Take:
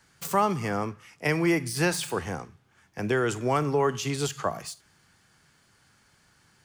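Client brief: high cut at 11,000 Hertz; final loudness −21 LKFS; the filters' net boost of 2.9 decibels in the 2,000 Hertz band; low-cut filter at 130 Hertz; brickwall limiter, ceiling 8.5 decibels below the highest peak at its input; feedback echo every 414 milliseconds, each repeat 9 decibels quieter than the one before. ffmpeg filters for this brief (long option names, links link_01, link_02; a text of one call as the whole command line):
ffmpeg -i in.wav -af "highpass=130,lowpass=11000,equalizer=frequency=2000:width_type=o:gain=3.5,alimiter=limit=-19dB:level=0:latency=1,aecho=1:1:414|828|1242|1656:0.355|0.124|0.0435|0.0152,volume=9dB" out.wav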